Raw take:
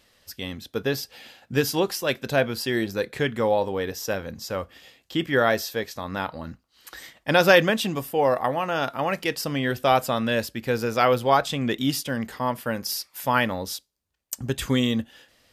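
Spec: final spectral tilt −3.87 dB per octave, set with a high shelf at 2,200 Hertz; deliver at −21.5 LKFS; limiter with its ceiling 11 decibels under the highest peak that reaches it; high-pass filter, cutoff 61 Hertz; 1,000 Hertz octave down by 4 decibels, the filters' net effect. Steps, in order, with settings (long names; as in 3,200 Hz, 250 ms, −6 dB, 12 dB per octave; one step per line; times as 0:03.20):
high-pass filter 61 Hz
parametric band 1,000 Hz −7 dB
high-shelf EQ 2,200 Hz +5.5 dB
level +5 dB
brickwall limiter −8 dBFS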